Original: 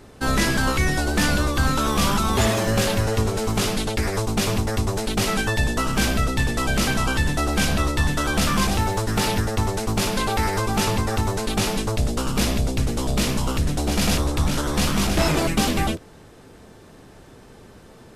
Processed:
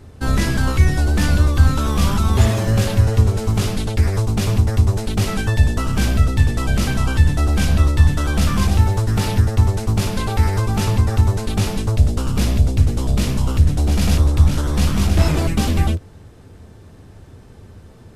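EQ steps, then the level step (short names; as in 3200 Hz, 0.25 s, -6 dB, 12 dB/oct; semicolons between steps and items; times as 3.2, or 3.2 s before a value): bell 87 Hz +11 dB 0.65 oct; low shelf 230 Hz +7.5 dB; -3.0 dB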